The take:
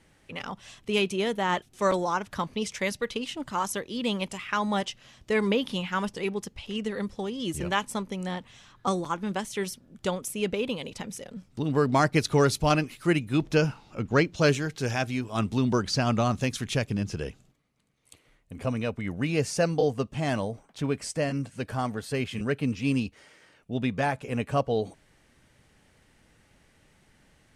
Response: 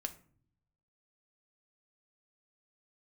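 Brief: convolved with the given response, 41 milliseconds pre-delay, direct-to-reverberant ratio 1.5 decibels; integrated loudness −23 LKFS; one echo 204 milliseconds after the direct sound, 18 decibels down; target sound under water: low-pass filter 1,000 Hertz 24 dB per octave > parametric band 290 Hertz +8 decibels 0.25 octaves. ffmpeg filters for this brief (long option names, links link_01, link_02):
-filter_complex "[0:a]aecho=1:1:204:0.126,asplit=2[link_01][link_02];[1:a]atrim=start_sample=2205,adelay=41[link_03];[link_02][link_03]afir=irnorm=-1:irlink=0,volume=0dB[link_04];[link_01][link_04]amix=inputs=2:normalize=0,lowpass=frequency=1000:width=0.5412,lowpass=frequency=1000:width=1.3066,equalizer=frequency=290:width_type=o:width=0.25:gain=8,volume=2dB"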